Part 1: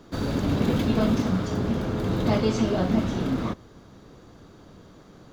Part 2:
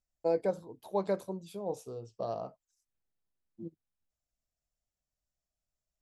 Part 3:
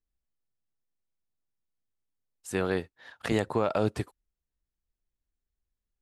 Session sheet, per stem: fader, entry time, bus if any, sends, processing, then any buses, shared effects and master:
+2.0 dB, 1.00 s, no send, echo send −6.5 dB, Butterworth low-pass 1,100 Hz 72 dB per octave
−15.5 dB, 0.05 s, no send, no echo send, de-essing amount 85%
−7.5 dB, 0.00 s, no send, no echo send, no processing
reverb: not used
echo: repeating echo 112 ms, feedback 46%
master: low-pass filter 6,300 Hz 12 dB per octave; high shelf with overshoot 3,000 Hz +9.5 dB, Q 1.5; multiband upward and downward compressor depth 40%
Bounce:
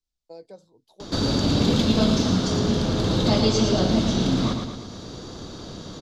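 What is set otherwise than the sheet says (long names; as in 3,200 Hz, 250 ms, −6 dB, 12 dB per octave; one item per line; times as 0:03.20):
stem 1: missing Butterworth low-pass 1,100 Hz 72 dB per octave
stem 2 −15.5 dB → −23.0 dB
stem 3 −7.5 dB → −15.0 dB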